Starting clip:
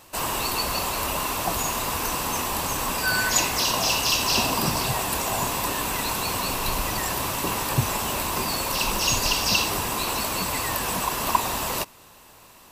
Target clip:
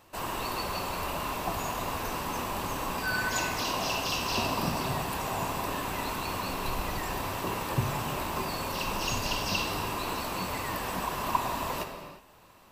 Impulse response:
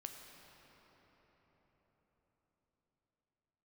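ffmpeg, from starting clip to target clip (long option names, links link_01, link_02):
-filter_complex "[0:a]equalizer=frequency=9700:width=0.37:gain=-9[link_01];[1:a]atrim=start_sample=2205,afade=type=out:start_time=0.42:duration=0.01,atrim=end_sample=18963[link_02];[link_01][link_02]afir=irnorm=-1:irlink=0"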